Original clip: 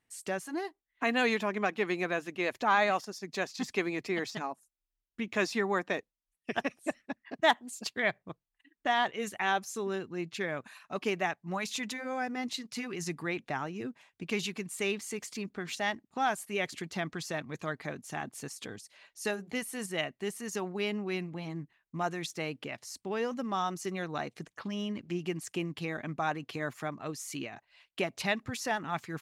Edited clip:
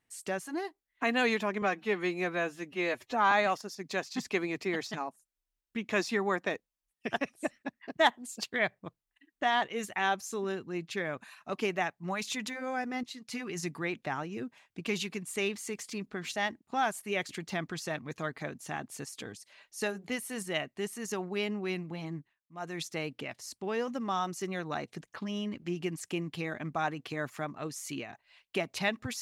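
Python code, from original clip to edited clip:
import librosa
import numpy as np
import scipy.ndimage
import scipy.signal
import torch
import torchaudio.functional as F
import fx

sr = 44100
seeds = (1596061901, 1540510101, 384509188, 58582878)

y = fx.edit(x, sr, fx.stretch_span(start_s=1.62, length_s=1.13, factor=1.5),
    fx.fade_in_from(start_s=12.47, length_s=0.45, curve='qsin', floor_db=-13.0),
    fx.fade_down_up(start_s=21.59, length_s=0.63, db=-19.0, fade_s=0.26), tone=tone)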